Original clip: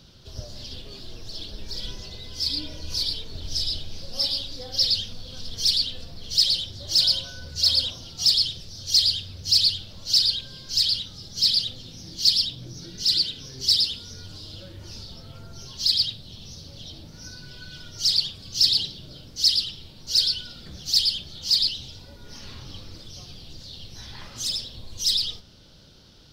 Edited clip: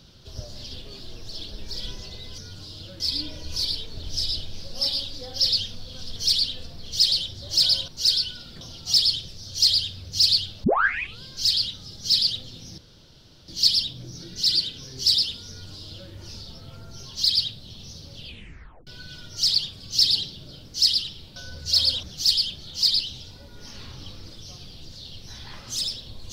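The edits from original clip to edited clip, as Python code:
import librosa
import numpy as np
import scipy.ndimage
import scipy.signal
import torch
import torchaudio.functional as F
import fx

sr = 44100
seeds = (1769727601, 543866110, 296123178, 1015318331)

y = fx.edit(x, sr, fx.swap(start_s=7.26, length_s=0.67, other_s=19.98, other_length_s=0.73),
    fx.tape_start(start_s=9.96, length_s=0.59),
    fx.insert_room_tone(at_s=12.1, length_s=0.7),
    fx.duplicate(start_s=14.11, length_s=0.62, to_s=2.38),
    fx.tape_stop(start_s=16.78, length_s=0.71), tone=tone)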